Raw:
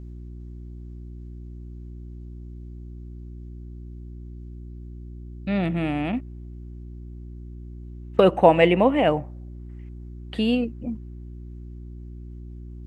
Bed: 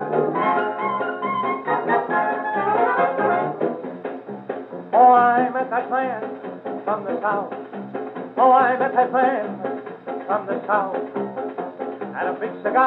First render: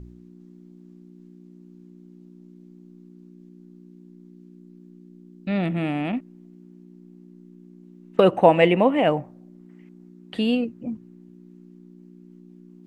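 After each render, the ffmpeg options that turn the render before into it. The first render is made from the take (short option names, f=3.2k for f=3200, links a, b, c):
-af "bandreject=f=60:t=h:w=4,bandreject=f=120:t=h:w=4"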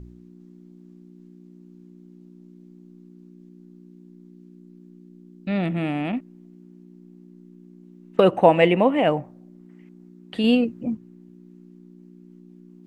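-filter_complex "[0:a]asplit=3[a][b][c];[a]atrim=end=10.442[d];[b]atrim=start=10.438:end=10.952,asetpts=PTS-STARTPTS,volume=4dB[e];[c]atrim=start=10.948[f];[d][e]acrossfade=d=0.004:c1=hsin:c2=hsin[g];[g][f]acrossfade=d=0.004:c1=hsin:c2=hsin"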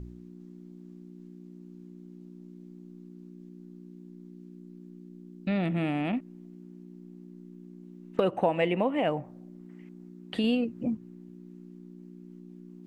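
-af "acompressor=threshold=-27dB:ratio=2.5"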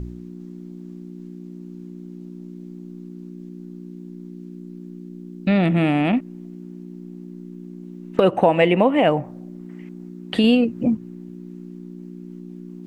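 -af "volume=10.5dB,alimiter=limit=-3dB:level=0:latency=1"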